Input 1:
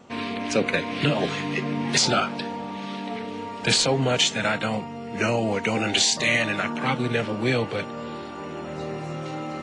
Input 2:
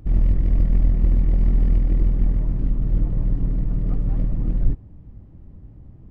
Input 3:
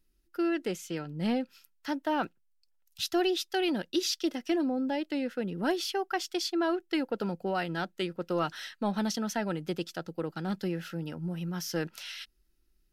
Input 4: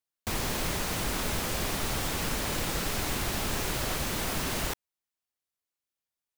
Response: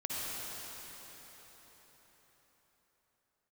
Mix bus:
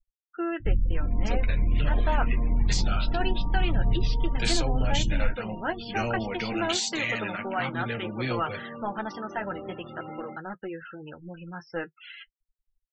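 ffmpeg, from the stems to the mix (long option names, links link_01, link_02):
-filter_complex "[0:a]flanger=delay=9:depth=6.4:regen=-87:speed=0.29:shape=sinusoidal,dynaudnorm=framelen=330:gausssize=3:maxgain=11.5dB,adelay=750,volume=-9dB[link_01];[1:a]aphaser=in_gain=1:out_gain=1:delay=4.1:decay=0.55:speed=0.91:type=sinusoidal,adelay=600,volume=-3.5dB[link_02];[2:a]lowpass=2300,equalizer=frequency=220:width=0.88:gain=-14,acontrast=48,volume=3dB[link_03];[3:a]highpass=frequency=120:width=0.5412,highpass=frequency=120:width=1.3066,acrusher=bits=6:mix=0:aa=0.000001,volume=-19dB[link_04];[link_01][link_02][link_04]amix=inputs=3:normalize=0,alimiter=limit=-10dB:level=0:latency=1:release=290,volume=0dB[link_05];[link_03][link_05]amix=inputs=2:normalize=0,afftfilt=real='re*gte(hypot(re,im),0.0224)':imag='im*gte(hypot(re,im),0.0224)':win_size=1024:overlap=0.75,adynamicequalizer=threshold=0.0126:dfrequency=460:dqfactor=1.1:tfrequency=460:tqfactor=1.1:attack=5:release=100:ratio=0.375:range=1.5:mode=cutabove:tftype=bell,flanger=delay=8.3:depth=1.7:regen=-37:speed=0.47:shape=triangular"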